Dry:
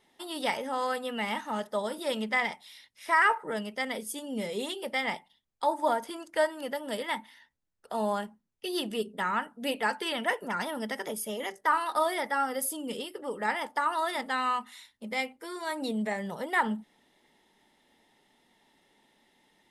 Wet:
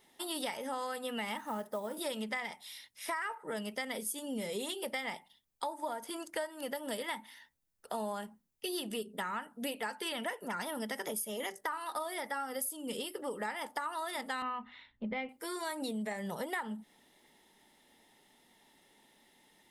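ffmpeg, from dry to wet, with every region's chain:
-filter_complex "[0:a]asettb=1/sr,asplit=3[s0][s1][s2];[s0]atrim=end=1.374[s3];[s1]atrim=start=1.37:end=1.97,asetpts=PTS-STARTPTS,afade=t=in:d=0.004:c=qsin,afade=t=out:st=0.596:d=0.004:c=qsin,acrossover=split=2700[s4][s5];[s5]acompressor=threshold=0.002:ratio=4:attack=1:release=60[s6];[s4][s6]amix=inputs=2:normalize=0,equalizer=f=3900:w=0.56:g=-7,acrusher=bits=7:mode=log:mix=0:aa=0.000001[s7];[s2]atrim=start=1.966[s8];[s3][s7]acrossfade=d=0.004:c1=hsin:c2=qsin[s9];[s9][s8]acrossfade=d=0.004:c1=qsin:c2=hsin,asettb=1/sr,asplit=3[s10][s11][s12];[s10]atrim=end=14.424[s13];[s11]atrim=start=14.42:end=15.29,asetpts=PTS-STARTPTS,afade=t=in:d=0.004:c=qsin,afade=t=out:st=0.866:d=0.004:c=qsin,lowpass=f=3300:w=0.5412,lowpass=f=3300:w=1.3066,aemphasis=mode=reproduction:type=bsi[s14];[s12]atrim=start=15.286[s15];[s13][s14]acrossfade=d=0.004:c1=hsin:c2=qsin[s16];[s16][s15]acrossfade=d=0.004:c1=qsin:c2=hsin,highshelf=f=8300:g=11,acompressor=threshold=0.02:ratio=10"

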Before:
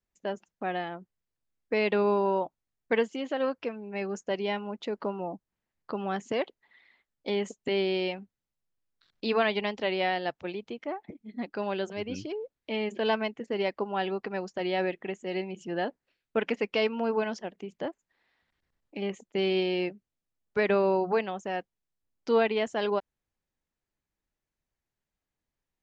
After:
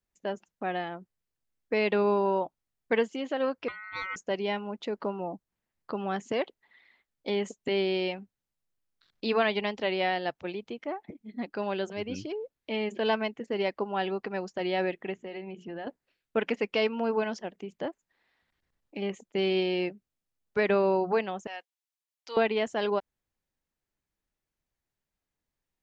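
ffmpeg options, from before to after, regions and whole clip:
-filter_complex "[0:a]asettb=1/sr,asplit=3[s0][s1][s2];[s0]atrim=end=3.684[s3];[s1]atrim=start=3.68:end=4.16,asetpts=PTS-STARTPTS,afade=t=in:d=0.004:c=qsin,afade=t=out:st=0.476:d=0.004:c=qsin,lowpass=3400,aeval=exprs='val(0)*sin(2*PI*1700*n/s)':c=same[s4];[s2]atrim=start=4.156[s5];[s3][s4]acrossfade=d=0.004:c1=hsin:c2=qsin[s6];[s6][s5]acrossfade=d=0.004:c1=qsin:c2=hsin,asettb=1/sr,asplit=3[s7][s8][s9];[s7]atrim=end=15.144[s10];[s8]atrim=start=15.14:end=15.87,asetpts=PTS-STARTPTS,afade=t=in:d=0.004:c=qsin,afade=t=out:st=0.726:d=0.004:c=qsin,lowpass=3300,bandreject=f=60:t=h:w=6,bandreject=f=120:t=h:w=6,bandreject=f=180:t=h:w=6,bandreject=f=240:t=h:w=6,bandreject=f=300:t=h:w=6,bandreject=f=360:t=h:w=6,bandreject=f=420:t=h:w=6,bandreject=f=480:t=h:w=6,acompressor=threshold=0.0178:ratio=6:attack=3.2:release=140:knee=1:detection=peak[s11];[s9]atrim=start=15.866[s12];[s10][s11]acrossfade=d=0.004:c1=hsin:c2=qsin[s13];[s13][s12]acrossfade=d=0.004:c1=qsin:c2=hsin,asettb=1/sr,asplit=3[s14][s15][s16];[s14]atrim=end=21.474[s17];[s15]atrim=start=21.47:end=22.37,asetpts=PTS-STARTPTS,afade=t=in:d=0.004:c=qsin,afade=t=out:st=0.896:d=0.004:c=qsin,highpass=1100,equalizer=f=1400:w=1.7:g=-6[s18];[s16]atrim=start=22.366[s19];[s17][s18]acrossfade=d=0.004:c1=hsin:c2=qsin[s20];[s20][s19]acrossfade=d=0.004:c1=qsin:c2=hsin"

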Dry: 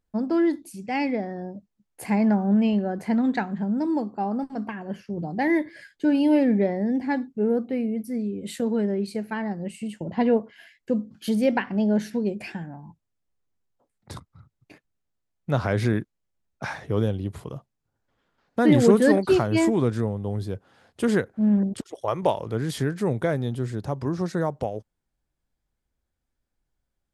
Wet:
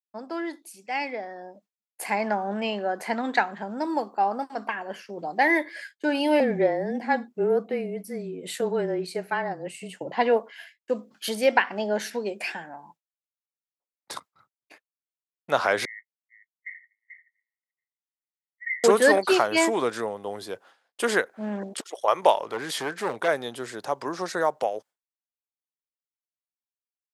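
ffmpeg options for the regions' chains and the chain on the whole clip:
-filter_complex "[0:a]asettb=1/sr,asplit=3[s0][s1][s2];[s0]atrim=end=6.404[s3];[s1]atrim=start=6.4:end=10.12,asetpts=PTS-STARTPTS,afade=t=in:d=0.004:c=qsin,afade=t=out:st=3.716:d=0.004:c=qsin,tiltshelf=f=820:g=4.5,afreqshift=-24[s4];[s2]atrim=start=10.116[s5];[s3][s4]acrossfade=d=0.004:c1=hsin:c2=qsin[s6];[s6][s5]acrossfade=d=0.004:c1=qsin:c2=hsin,asettb=1/sr,asplit=3[s7][s8][s9];[s7]atrim=end=15.854[s10];[s8]atrim=start=15.85:end=18.84,asetpts=PTS-STARTPTS,afade=t=in:d=0.004:c=qsin,afade=t=out:st=2.986:d=0.004:c=qsin,asuperpass=centerf=2000:order=12:qfactor=6,aecho=1:1:436:0.596,atrim=end_sample=131859[s11];[s9]atrim=start=18.836[s12];[s10][s11]acrossfade=d=0.004:c1=hsin:c2=qsin[s13];[s13][s12]acrossfade=d=0.004:c1=qsin:c2=hsin,asettb=1/sr,asplit=3[s14][s15][s16];[s14]atrim=end=22.364[s17];[s15]atrim=start=22.36:end=23.28,asetpts=PTS-STARTPTS,afade=t=in:d=0.004:c=qsin,afade=t=out:st=0.916:d=0.004:c=qsin,highshelf=f=5000:g=-5,bandreject=f=490:w=16,volume=10.6,asoftclip=hard,volume=0.0944[s18];[s16]atrim=start=23.276[s19];[s17][s18]acrossfade=d=0.004:c1=hsin:c2=qsin[s20];[s20][s19]acrossfade=d=0.004:c1=qsin:c2=hsin,agate=range=0.0224:threshold=0.00631:ratio=3:detection=peak,highpass=650,dynaudnorm=f=300:g=13:m=2.37"

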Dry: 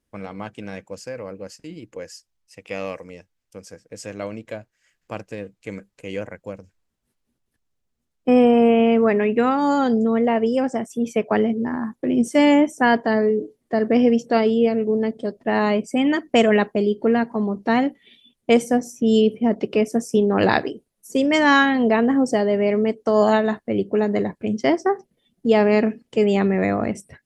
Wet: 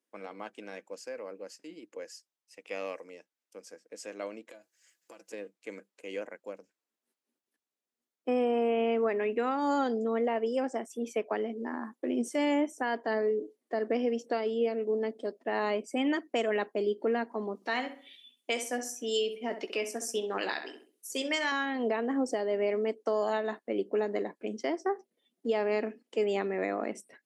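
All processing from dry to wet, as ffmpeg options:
-filter_complex "[0:a]asettb=1/sr,asplit=3[s0][s1][s2];[s0]atrim=end=4.504[s3];[s1]atrim=start=4.5:end=5.33,asetpts=PTS-STARTPTS,afade=t=in:d=0.004:c=qsin,afade=t=out:st=0.826:d=0.004:c=qsin,bass=f=250:g=1,treble=f=4000:g=11,aecho=1:1:6:0.65,atrim=end_sample=36603,acompressor=threshold=0.0112:ratio=8:attack=3.2:release=140:knee=1:detection=peak[s4];[s2]atrim=start=5.326[s5];[s3][s4]acrossfade=d=0.004:c1=hsin:c2=qsin[s6];[s6][s5]acrossfade=d=0.004:c1=qsin:c2=hsin,asettb=1/sr,asplit=3[s7][s8][s9];[s7]atrim=end=17.554[s10];[s8]atrim=start=17.55:end=21.52,asetpts=PTS-STARTPTS,afade=t=in:d=0.004:c=qsin,afade=t=out:st=3.966:d=0.004:c=qsin,tiltshelf=f=1200:g=-7.5,asplit=2[s11][s12];[s12]adelay=16,volume=0.299[s13];[s11][s13]amix=inputs=2:normalize=0,atrim=end_sample=175077,asplit=2[s14][s15];[s15]adelay=66,lowpass=f=2900:p=1,volume=0.316,asplit=2[s16][s17];[s17]adelay=66,lowpass=f=2900:p=1,volume=0.33,asplit=2[s18][s19];[s19]adelay=66,lowpass=f=2900:p=1,volume=0.33,asplit=2[s20][s21];[s21]adelay=66,lowpass=f=2900:p=1,volume=0.33[s22];[s14][s16][s18][s20][s22]amix=inputs=5:normalize=0,atrim=end_sample=175077[s23];[s9]atrim=start=21.516[s24];[s10][s23]acrossfade=d=0.004:c1=hsin:c2=qsin[s25];[s25][s24]acrossfade=d=0.004:c1=qsin:c2=hsin,highpass=f=270:w=0.5412,highpass=f=270:w=1.3066,alimiter=limit=0.237:level=0:latency=1:release=310,volume=0.422"

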